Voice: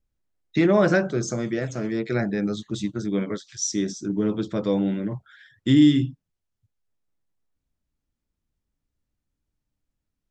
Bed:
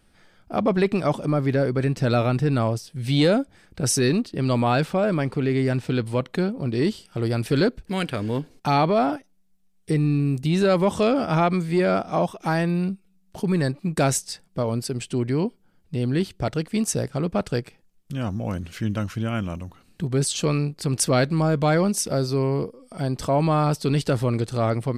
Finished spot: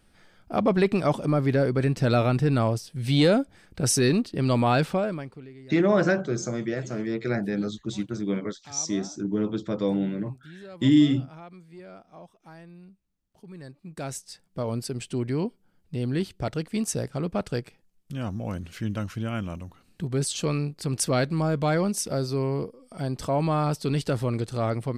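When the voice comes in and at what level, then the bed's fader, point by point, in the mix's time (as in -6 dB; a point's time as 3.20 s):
5.15 s, -2.5 dB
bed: 4.93 s -1 dB
5.54 s -24.5 dB
13.33 s -24.5 dB
14.70 s -4 dB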